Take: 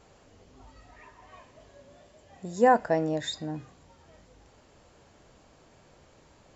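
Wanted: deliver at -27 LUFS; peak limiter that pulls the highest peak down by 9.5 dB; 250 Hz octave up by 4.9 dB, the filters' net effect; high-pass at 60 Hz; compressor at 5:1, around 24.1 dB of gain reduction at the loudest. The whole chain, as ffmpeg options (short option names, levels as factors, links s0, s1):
-af "highpass=60,equalizer=f=250:t=o:g=6,acompressor=threshold=0.00794:ratio=5,volume=17.8,alimiter=limit=0.2:level=0:latency=1"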